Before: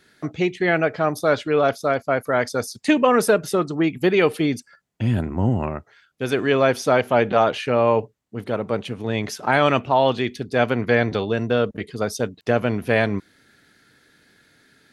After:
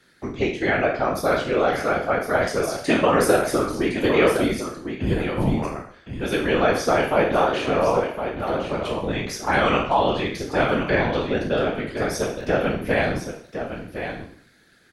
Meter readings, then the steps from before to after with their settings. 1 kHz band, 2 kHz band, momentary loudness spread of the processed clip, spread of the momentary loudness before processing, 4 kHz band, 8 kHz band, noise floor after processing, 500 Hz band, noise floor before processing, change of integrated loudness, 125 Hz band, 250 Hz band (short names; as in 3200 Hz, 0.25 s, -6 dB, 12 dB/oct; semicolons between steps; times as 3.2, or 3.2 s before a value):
0.0 dB, 0.0 dB, 12 LU, 9 LU, 0.0 dB, +1.0 dB, -54 dBFS, -1.0 dB, -61 dBFS, -1.5 dB, -3.0 dB, -1.5 dB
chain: spectral trails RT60 0.56 s; echo 1.061 s -9 dB; whisperiser; gain -3 dB